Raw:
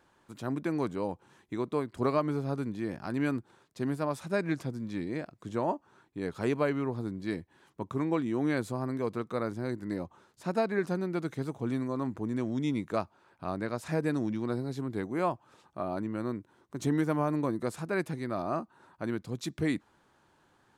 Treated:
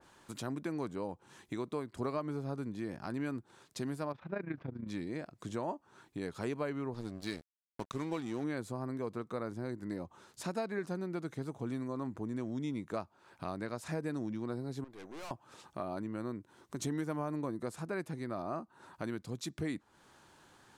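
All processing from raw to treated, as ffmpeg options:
ffmpeg -i in.wav -filter_complex "[0:a]asettb=1/sr,asplit=3[link_01][link_02][link_03];[link_01]atrim=end=4.124[link_04];[link_02]atrim=start=4.12:end=4.88,asetpts=PTS-STARTPTS,afade=type=in:duration=0.004:curve=qsin,afade=type=out:start_time=0.756:duration=0.004:curve=qsin,lowpass=frequency=2800:width=0.5412,lowpass=frequency=2800:width=1.3066,tremolo=f=28:d=0.75[link_05];[link_03]atrim=start=4.876[link_06];[link_04][link_05]acrossfade=duration=0.004:curve1=hsin:curve2=qsin[link_07];[link_07][link_06]acrossfade=duration=0.004:curve1=qsin:curve2=hsin,asettb=1/sr,asplit=3[link_08][link_09][link_10];[link_08]atrim=end=6.944[link_11];[link_09]atrim=start=6.94:end=8.44,asetpts=PTS-STARTPTS,afade=type=in:duration=0.004:curve=qsin,afade=type=out:start_time=1.496:duration=0.004:curve=qsin,equalizer=frequency=5000:width_type=o:width=1.9:gain=9,aeval=exprs='sgn(val(0))*max(abs(val(0))-0.00668,0)':channel_layout=same[link_12];[link_10]atrim=start=8.436[link_13];[link_11][link_12]acrossfade=duration=0.004:curve1=hsin:curve2=qsin[link_14];[link_14][link_13]acrossfade=duration=0.004:curve1=qsin:curve2=hsin,asettb=1/sr,asplit=3[link_15][link_16][link_17];[link_15]atrim=end=14.844[link_18];[link_16]atrim=start=14.84:end=15.31,asetpts=PTS-STARTPTS,afade=type=in:duration=0.004:curve=qsin,afade=type=out:start_time=0.466:duration=0.004:curve=qsin,highpass=frequency=890:poles=1,equalizer=frequency=9000:width=0.41:gain=-10.5,aeval=exprs='(tanh(224*val(0)+0.5)-tanh(0.5))/224':channel_layout=same[link_19];[link_17]atrim=start=15.306[link_20];[link_18][link_19]acrossfade=duration=0.004:curve1=hsin:curve2=qsin[link_21];[link_21][link_20]acrossfade=duration=0.004:curve1=qsin:curve2=hsin,equalizer=frequency=7600:width_type=o:width=2.6:gain=7,acompressor=threshold=-46dB:ratio=2,adynamicequalizer=threshold=0.00112:dfrequency=1900:dqfactor=0.7:tfrequency=1900:tqfactor=0.7:attack=5:release=100:ratio=0.375:range=3.5:mode=cutabove:tftype=highshelf,volume=3.5dB" out.wav

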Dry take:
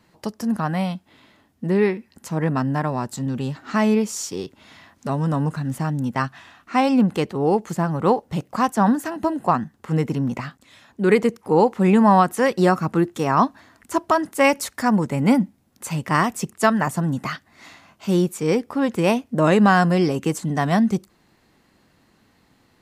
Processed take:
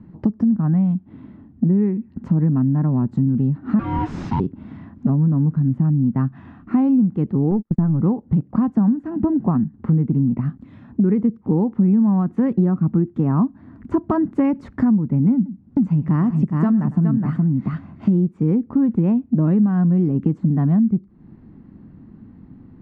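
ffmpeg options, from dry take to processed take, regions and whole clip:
ffmpeg -i in.wav -filter_complex "[0:a]asettb=1/sr,asplit=3[link_01][link_02][link_03];[link_01]atrim=end=3.794[link_04];[link_02]atrim=start=3.79:end=4.4,asetpts=PTS-STARTPTS,afade=type=in:duration=0.004:curve=qsin,afade=type=out:start_time=0.606:duration=0.004:curve=qsin,highpass=620,aeval=exprs='val(0)*sin(2*PI*520*n/s)':channel_layout=same,asplit=2[link_05][link_06];[link_06]highpass=frequency=720:poles=1,volume=31dB,asoftclip=type=tanh:threshold=-11dB[link_07];[link_05][link_07]amix=inputs=2:normalize=0,lowpass=frequency=2300:poles=1,volume=-6dB[link_08];[link_03]atrim=start=4.396[link_09];[link_04][link_08]acrossfade=duration=0.004:curve1=hsin:curve2=qsin[link_10];[link_10][link_09]acrossfade=duration=0.004:curve1=qsin:curve2=hsin,asettb=1/sr,asplit=3[link_11][link_12][link_13];[link_11]atrim=end=7.514[link_14];[link_12]atrim=start=7.51:end=8,asetpts=PTS-STARTPTS,afade=type=in:duration=0.004:curve=qsin,afade=type=out:start_time=0.486:duration=0.004:curve=qsin,aeval=exprs='if(lt(val(0),0),0.708*val(0),val(0))':channel_layout=same,agate=range=-39dB:threshold=-31dB:ratio=16:release=100:detection=peak[link_15];[link_13]atrim=start=7.996[link_16];[link_14][link_15]acrossfade=duration=0.004:curve1=hsin:curve2=qsin[link_17];[link_17][link_16]acrossfade=duration=0.004:curve1=qsin:curve2=hsin,asettb=1/sr,asplit=3[link_18][link_19][link_20];[link_18]atrim=end=15.354[link_21];[link_19]atrim=start=15.35:end=18.14,asetpts=PTS-STARTPTS,afade=type=in:duration=0.004:curve=qsin,afade=type=out:start_time=2.786:duration=0.004:curve=qsin,highshelf=frequency=4900:gain=5.5,aecho=1:1:105|417:0.126|0.531,atrim=end_sample=123039[link_22];[link_20]atrim=start=18.136[link_23];[link_21][link_22]acrossfade=duration=0.004:curve1=hsin:curve2=qsin[link_24];[link_24][link_23]acrossfade=duration=0.004:curve1=qsin:curve2=hsin,lowpass=1100,lowshelf=frequency=360:width_type=q:width=1.5:gain=13.5,acompressor=threshold=-20dB:ratio=6,volume=4dB" out.wav

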